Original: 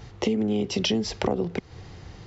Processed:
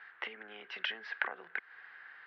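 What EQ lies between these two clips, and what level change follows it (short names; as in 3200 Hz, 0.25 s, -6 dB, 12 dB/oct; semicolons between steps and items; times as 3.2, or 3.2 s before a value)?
ladder band-pass 1700 Hz, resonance 80%; air absorption 370 m; +11.0 dB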